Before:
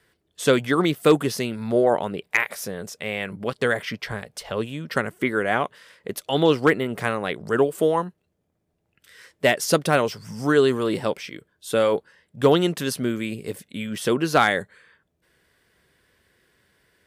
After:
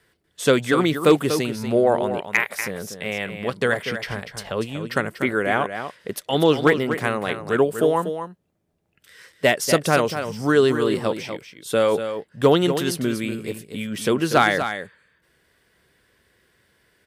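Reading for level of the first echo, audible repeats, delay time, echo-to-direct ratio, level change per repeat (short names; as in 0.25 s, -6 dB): -9.0 dB, 1, 0.241 s, -9.0 dB, no steady repeat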